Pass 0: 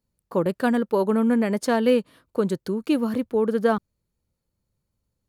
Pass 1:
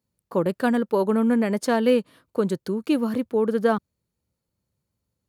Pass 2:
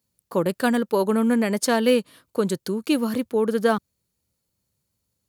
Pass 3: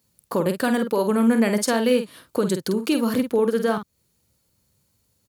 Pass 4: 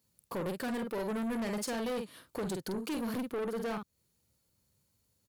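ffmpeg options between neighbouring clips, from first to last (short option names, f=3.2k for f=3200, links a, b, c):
-af "highpass=70"
-af "highshelf=f=2.8k:g=10"
-filter_complex "[0:a]asplit=2[a][b];[b]acompressor=threshold=-31dB:ratio=6,volume=1.5dB[c];[a][c]amix=inputs=2:normalize=0,alimiter=limit=-13.5dB:level=0:latency=1:release=285,asplit=2[d][e];[e]adelay=48,volume=-8dB[f];[d][f]amix=inputs=2:normalize=0,volume=1.5dB"
-af "asoftclip=type=tanh:threshold=-24.5dB,volume=-7.5dB"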